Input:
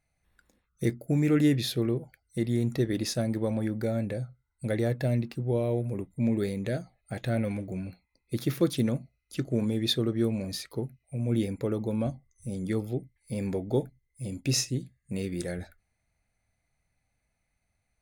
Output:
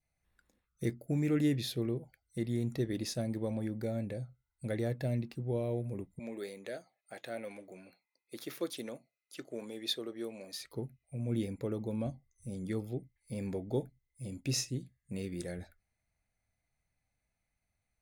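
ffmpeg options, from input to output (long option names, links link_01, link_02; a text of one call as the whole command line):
ffmpeg -i in.wav -filter_complex "[0:a]asettb=1/sr,asplit=3[link_01][link_02][link_03];[link_01]atrim=end=6.194[link_04];[link_02]atrim=start=6.19:end=10.61,asetpts=PTS-STARTPTS,afade=type=in:duration=0.004:curve=qsin,afade=type=out:start_time=4.416:duration=0.004:curve=qsin,highpass=440[link_05];[link_03]atrim=start=10.606[link_06];[link_04][link_05]acrossfade=duration=0.004:curve1=hsin:curve2=qsin[link_07];[link_07][link_06]acrossfade=duration=0.004:curve1=qsin:curve2=hsin,adynamicequalizer=threshold=0.002:dfrequency=1400:dqfactor=2.3:tfrequency=1400:tqfactor=2.3:attack=5:release=100:ratio=0.375:range=2.5:mode=cutabove:tftype=bell,volume=-6.5dB" out.wav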